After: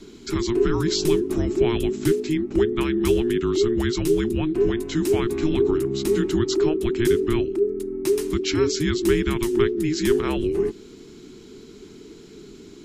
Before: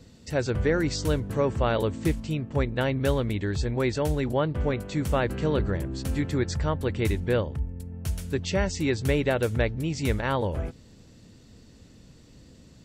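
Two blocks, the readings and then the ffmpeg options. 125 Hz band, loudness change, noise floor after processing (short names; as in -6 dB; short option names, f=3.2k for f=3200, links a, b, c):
-2.0 dB, +5.0 dB, -44 dBFS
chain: -filter_complex "[0:a]acrossover=split=180|3000[a][b][c];[b]acompressor=threshold=-40dB:ratio=2[d];[a][d][c]amix=inputs=3:normalize=0,afreqshift=-470,volume=8dB"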